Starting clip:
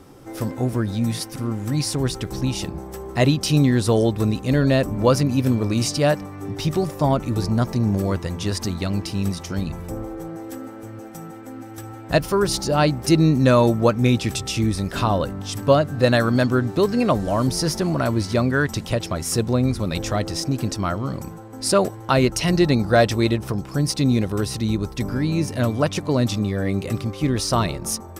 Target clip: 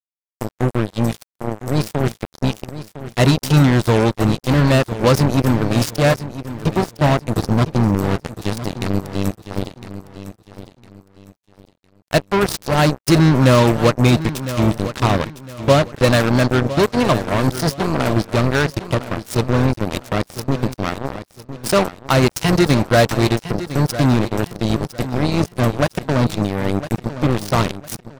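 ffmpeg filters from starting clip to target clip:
-af "adynamicequalizer=threshold=0.0355:dfrequency=130:dqfactor=1.5:tfrequency=130:tqfactor=1.5:attack=5:release=100:ratio=0.375:range=2:mode=boostabove:tftype=bell,acrusher=bits=2:mix=0:aa=0.5,aecho=1:1:1007|2014|3021:0.224|0.0672|0.0201,volume=1.19"

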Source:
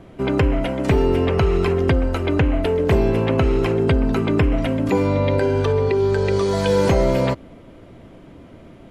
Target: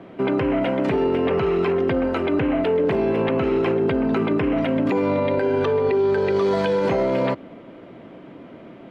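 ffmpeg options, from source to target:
-filter_complex "[0:a]acrossover=split=150 3800:gain=0.0794 1 0.126[s0][s1][s2];[s0][s1][s2]amix=inputs=3:normalize=0,alimiter=limit=0.141:level=0:latency=1:release=19,volume=1.5"

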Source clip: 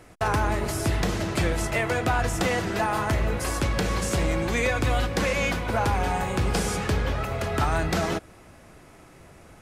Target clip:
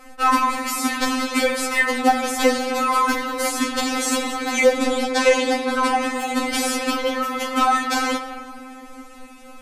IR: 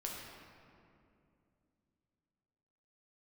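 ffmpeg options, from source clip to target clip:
-filter_complex "[0:a]asettb=1/sr,asplit=3[s0][s1][s2];[s0]atrim=end=4.744[s3];[s1]atrim=start=4.74:end=6.16,asetpts=PTS-STARTPTS,afade=t=in:d=0.004:c=qsin,afade=t=out:st=1.416:d=0.004:c=qsin,lowpass=f=11000:w=0.5412,lowpass=f=11000:w=1.3066[s4];[s2]atrim=start=6.156[s5];[s3][s4]acrossfade=d=0.004:c1=hsin:c2=qsin[s6];[s6][s5]acrossfade=d=0.004:c1=qsin:c2=hsin,asplit=2[s7][s8];[1:a]atrim=start_sample=2205[s9];[s8][s9]afir=irnorm=-1:irlink=0,volume=0.75[s10];[s7][s10]amix=inputs=2:normalize=0,afftfilt=real='re*3.46*eq(mod(b,12),0)':imag='im*3.46*eq(mod(b,12),0)':win_size=2048:overlap=0.75,volume=2.11"

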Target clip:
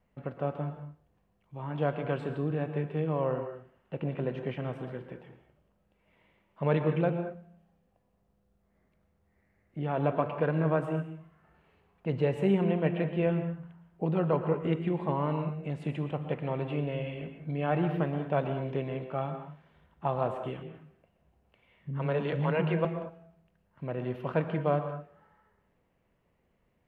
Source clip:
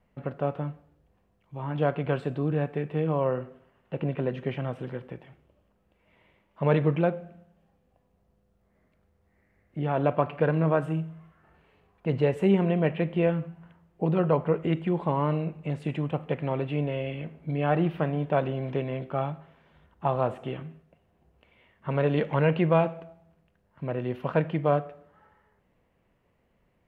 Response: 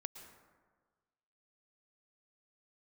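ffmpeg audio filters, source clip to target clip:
-filter_complex "[0:a]asettb=1/sr,asplit=3[s0][s1][s2];[s0]atrim=end=20.634[s3];[s1]atrim=start=20.63:end=22.85,asetpts=PTS-STARTPTS,afade=t=in:d=0.004:c=qsin,afade=t=out:st=2.216:d=0.004:c=qsin,acrossover=split=280[s4][s5];[s5]adelay=110[s6];[s4][s6]amix=inputs=2:normalize=0,atrim=end_sample=97902[s7];[s2]atrim=start=22.846[s8];[s3][s7]acrossfade=d=0.004:c1=hsin:c2=qsin[s9];[s9][s8]acrossfade=d=0.004:c1=qsin:c2=hsin[s10];[1:a]atrim=start_sample=2205,afade=t=out:st=0.29:d=0.01,atrim=end_sample=13230[s11];[s10][s11]afir=irnorm=-1:irlink=0"

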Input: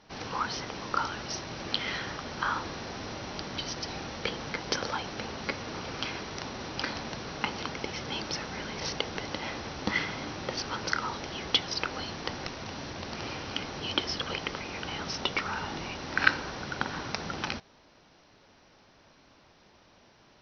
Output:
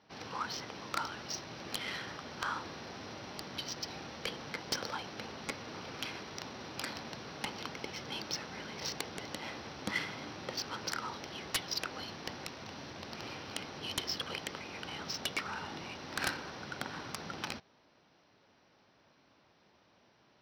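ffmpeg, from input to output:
-af "highpass=90,aemphasis=mode=production:type=50fm,aeval=exprs='(mod(5.31*val(0)+1,2)-1)/5.31':c=same,adynamicsmooth=sensitivity=4:basefreq=4000,volume=0.473"

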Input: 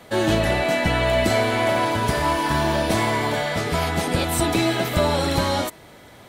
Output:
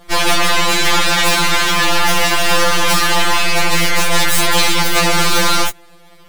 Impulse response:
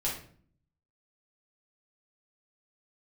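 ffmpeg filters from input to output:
-af "aeval=exprs='0.422*(cos(1*acos(clip(val(0)/0.422,-1,1)))-cos(1*PI/2))+0.15*(cos(6*acos(clip(val(0)/0.422,-1,1)))-cos(6*PI/2))+0.0531*(cos(7*acos(clip(val(0)/0.422,-1,1)))-cos(7*PI/2))':c=same,apsyclip=15.8,afftfilt=real='re*2.83*eq(mod(b,8),0)':imag='im*2.83*eq(mod(b,8),0)':win_size=2048:overlap=0.75,volume=0.447"

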